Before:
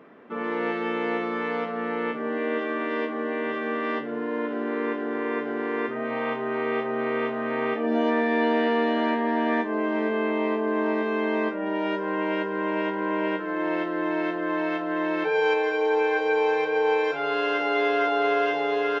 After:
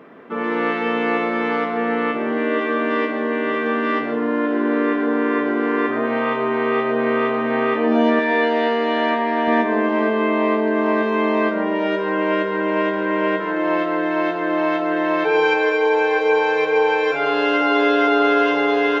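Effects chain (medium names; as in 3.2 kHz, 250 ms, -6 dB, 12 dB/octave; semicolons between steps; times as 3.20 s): 8.19–9.48 s: bass shelf 320 Hz -8.5 dB; reverberation RT60 0.95 s, pre-delay 103 ms, DRR 6 dB; trim +6.5 dB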